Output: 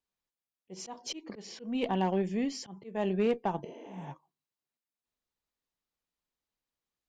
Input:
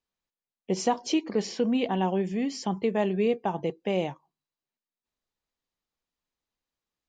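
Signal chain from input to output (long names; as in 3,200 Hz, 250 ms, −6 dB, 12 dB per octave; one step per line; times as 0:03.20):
volume swells 254 ms
healed spectral selection 0:03.67–0:04.07, 230–7,300 Hz both
harmonic generator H 6 −23 dB, 8 −30 dB, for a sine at −14.5 dBFS
level −3 dB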